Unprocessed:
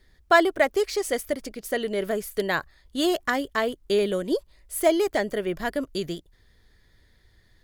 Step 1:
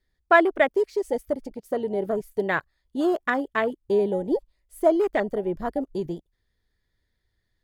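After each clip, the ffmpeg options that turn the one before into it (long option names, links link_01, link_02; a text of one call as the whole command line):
ffmpeg -i in.wav -af "afwtdn=0.0355,volume=1dB" out.wav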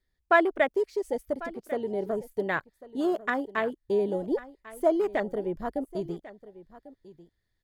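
ffmpeg -i in.wav -af "aecho=1:1:1096:0.133,volume=-4dB" out.wav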